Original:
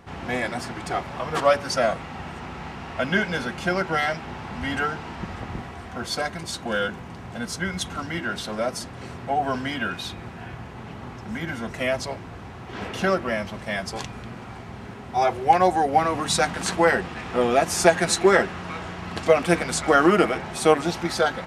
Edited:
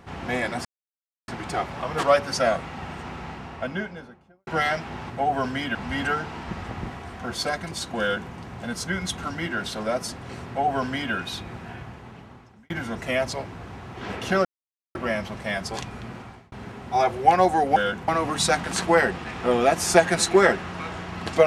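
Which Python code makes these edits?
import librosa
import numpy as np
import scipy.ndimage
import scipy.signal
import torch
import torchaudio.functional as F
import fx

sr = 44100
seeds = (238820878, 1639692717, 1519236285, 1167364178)

y = fx.studio_fade_out(x, sr, start_s=2.46, length_s=1.38)
y = fx.edit(y, sr, fx.insert_silence(at_s=0.65, length_s=0.63),
    fx.duplicate(start_s=6.72, length_s=0.32, to_s=15.98),
    fx.duplicate(start_s=9.2, length_s=0.65, to_s=4.47),
    fx.fade_out_span(start_s=10.36, length_s=1.06),
    fx.insert_silence(at_s=13.17, length_s=0.5),
    fx.fade_out_span(start_s=14.38, length_s=0.36), tone=tone)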